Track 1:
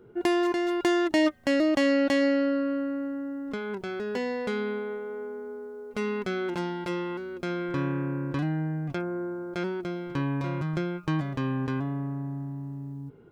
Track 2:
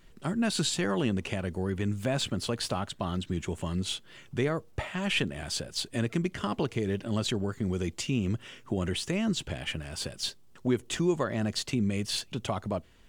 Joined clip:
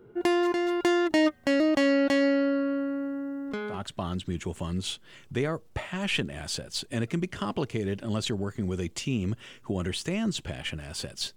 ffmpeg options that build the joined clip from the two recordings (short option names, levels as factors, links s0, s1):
-filter_complex "[0:a]apad=whole_dur=11.36,atrim=end=11.36,atrim=end=3.84,asetpts=PTS-STARTPTS[s0];[1:a]atrim=start=2.68:end=10.38,asetpts=PTS-STARTPTS[s1];[s0][s1]acrossfade=d=0.18:c1=tri:c2=tri"